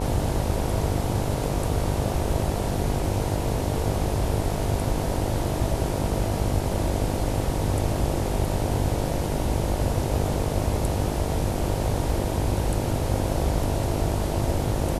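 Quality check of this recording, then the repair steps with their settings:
buzz 50 Hz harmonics 19 -29 dBFS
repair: de-hum 50 Hz, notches 19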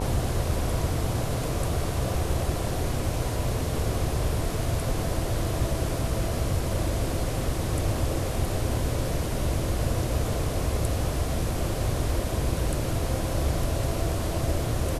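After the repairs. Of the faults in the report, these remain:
none

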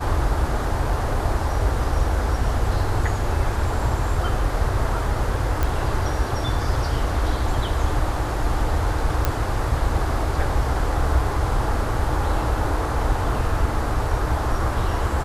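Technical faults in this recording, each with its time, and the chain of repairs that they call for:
5.63 pop
9.25 pop -6 dBFS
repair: de-click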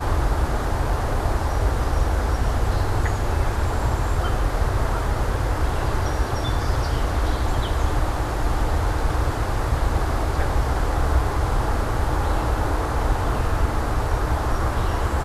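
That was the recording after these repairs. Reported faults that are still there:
none

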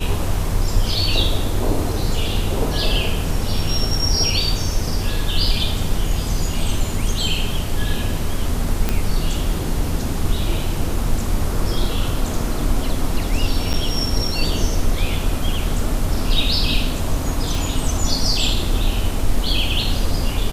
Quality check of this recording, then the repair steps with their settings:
8.89 pop -5 dBFS
13.73–13.74 gap 7.9 ms
17.55 pop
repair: de-click; interpolate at 13.73, 7.9 ms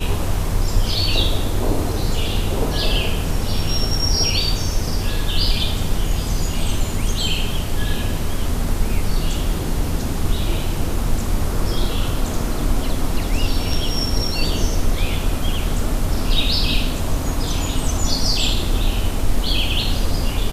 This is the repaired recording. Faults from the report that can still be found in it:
none

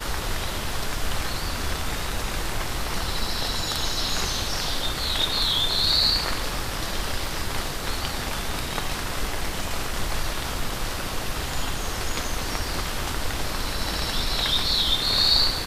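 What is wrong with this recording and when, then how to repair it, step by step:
7.26 gap 2.8 ms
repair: interpolate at 7.26, 2.8 ms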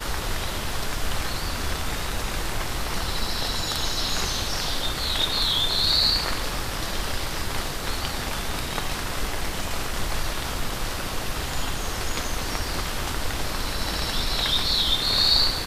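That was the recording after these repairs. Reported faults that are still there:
none

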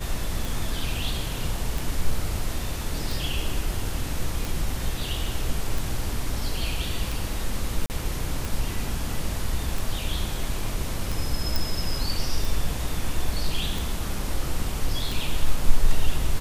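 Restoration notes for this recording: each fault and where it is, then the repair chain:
tick 45 rpm
7.86–7.9 gap 39 ms
11.56 pop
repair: de-click; interpolate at 7.86, 39 ms

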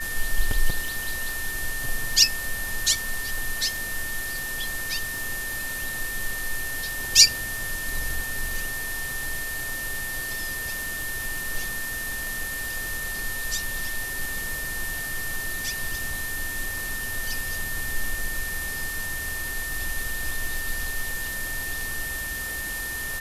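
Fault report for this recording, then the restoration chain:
crackle 31/s -31 dBFS
tone 1800 Hz -31 dBFS
0.88 pop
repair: de-click; notch 1800 Hz, Q 30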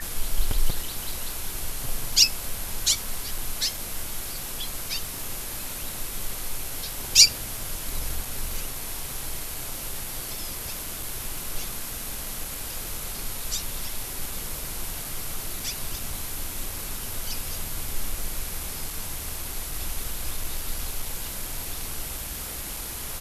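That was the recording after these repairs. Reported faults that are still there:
0.88 pop

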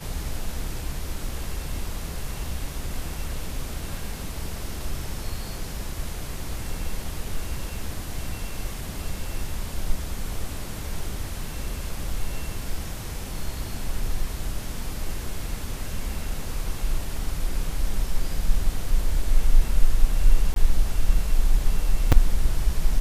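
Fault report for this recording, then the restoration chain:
20.54–20.56 gap 22 ms
22.12 gap 4.9 ms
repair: interpolate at 20.54, 22 ms; interpolate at 22.12, 4.9 ms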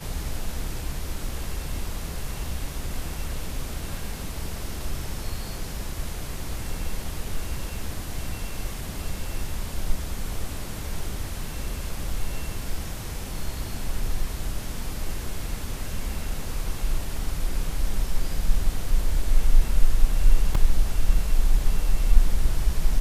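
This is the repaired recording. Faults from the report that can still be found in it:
none

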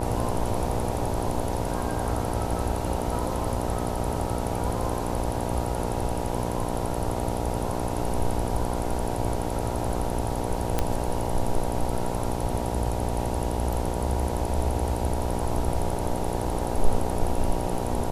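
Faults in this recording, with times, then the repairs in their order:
buzz 60 Hz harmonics 16 -30 dBFS
10.79 pop -9 dBFS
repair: de-click; de-hum 60 Hz, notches 16

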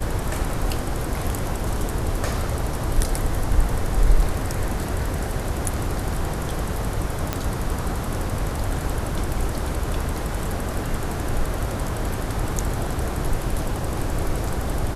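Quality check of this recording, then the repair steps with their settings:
7.33 pop -8 dBFS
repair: de-click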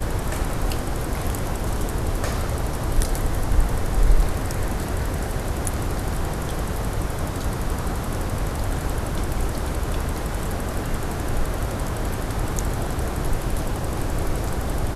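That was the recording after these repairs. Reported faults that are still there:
none

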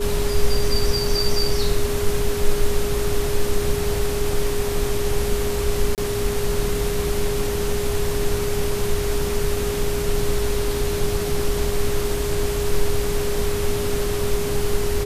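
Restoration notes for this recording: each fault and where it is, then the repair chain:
tone 410 Hz -24 dBFS
5.95–5.98 gap 28 ms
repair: notch 410 Hz, Q 30; interpolate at 5.95, 28 ms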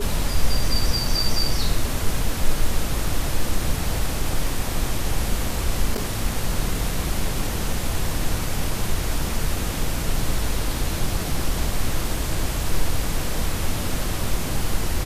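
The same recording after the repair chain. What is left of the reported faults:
none

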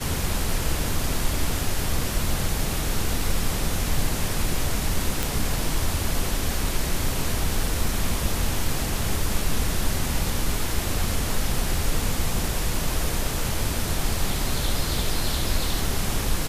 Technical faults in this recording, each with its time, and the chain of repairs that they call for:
5.23 pop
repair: de-click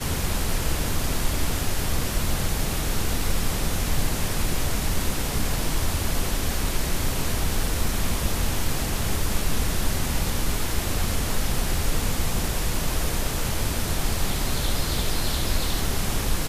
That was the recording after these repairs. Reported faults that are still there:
none

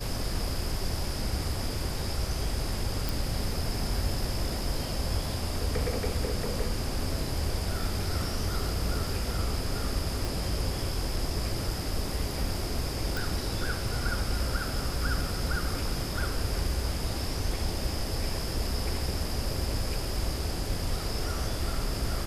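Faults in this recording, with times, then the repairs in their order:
3.09 pop
10.25 pop
13.17 pop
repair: de-click

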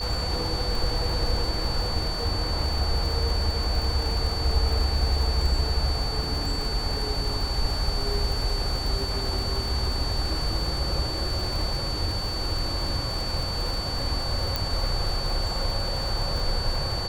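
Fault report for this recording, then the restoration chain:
crackle 49/s -29 dBFS
tone 4500 Hz -31 dBFS
14.56 pop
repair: de-click; notch 4500 Hz, Q 30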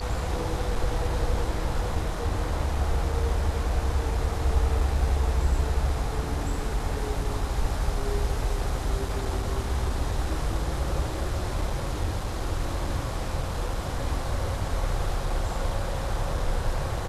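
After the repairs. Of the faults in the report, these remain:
none

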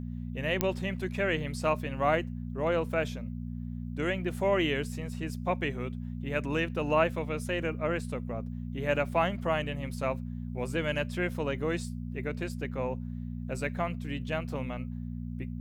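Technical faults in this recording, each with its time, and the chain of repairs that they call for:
hum 60 Hz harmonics 4 -37 dBFS
0.61 pop -10 dBFS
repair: de-click; de-hum 60 Hz, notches 4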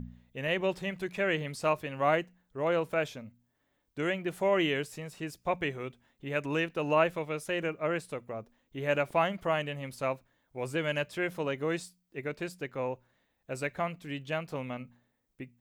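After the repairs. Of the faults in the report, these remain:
none

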